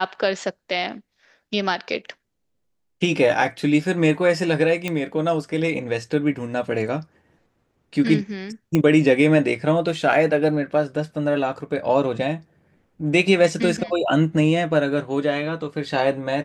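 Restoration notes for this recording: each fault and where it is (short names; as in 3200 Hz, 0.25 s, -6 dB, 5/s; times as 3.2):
4.88 pop -11 dBFS
8.75 pop -8 dBFS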